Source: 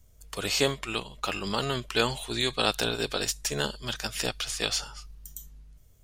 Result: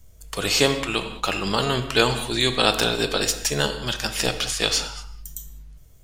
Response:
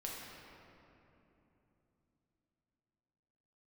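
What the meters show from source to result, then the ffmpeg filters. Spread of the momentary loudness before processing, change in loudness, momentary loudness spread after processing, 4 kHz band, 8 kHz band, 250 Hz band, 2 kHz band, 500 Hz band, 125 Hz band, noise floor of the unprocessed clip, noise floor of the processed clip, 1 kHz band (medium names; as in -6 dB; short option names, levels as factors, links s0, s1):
17 LU, +7.0 dB, 15 LU, +6.5 dB, +6.5 dB, +7.0 dB, +7.0 dB, +7.0 dB, +7.0 dB, -57 dBFS, -47 dBFS, +7.0 dB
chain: -filter_complex "[0:a]asplit=2[s0][s1];[1:a]atrim=start_sample=2205,afade=t=out:st=0.27:d=0.01,atrim=end_sample=12348[s2];[s1][s2]afir=irnorm=-1:irlink=0,volume=0.841[s3];[s0][s3]amix=inputs=2:normalize=0,volume=1.41"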